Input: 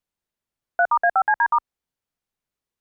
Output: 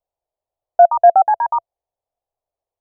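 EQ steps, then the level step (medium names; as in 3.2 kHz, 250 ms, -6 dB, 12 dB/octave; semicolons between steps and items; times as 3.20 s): FFT filter 100 Hz 0 dB, 210 Hz -16 dB, 680 Hz +14 dB, 1.5 kHz -13 dB; 0.0 dB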